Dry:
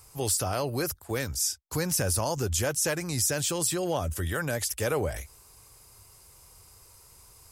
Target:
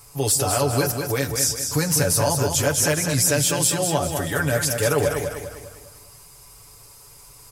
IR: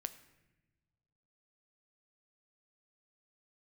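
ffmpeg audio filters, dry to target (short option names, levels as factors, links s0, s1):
-filter_complex "[0:a]aecho=1:1:200|400|600|800|1000:0.501|0.216|0.0927|0.0398|0.0171,asplit=2[s0][s1];[1:a]atrim=start_sample=2205,adelay=7[s2];[s1][s2]afir=irnorm=-1:irlink=0,volume=1[s3];[s0][s3]amix=inputs=2:normalize=0,volume=1.68"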